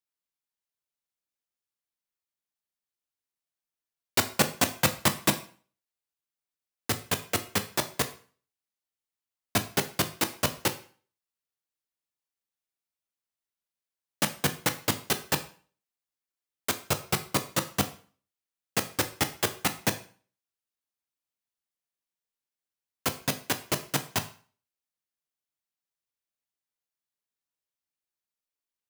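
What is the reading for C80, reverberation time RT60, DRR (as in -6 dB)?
18.5 dB, 0.45 s, 8.5 dB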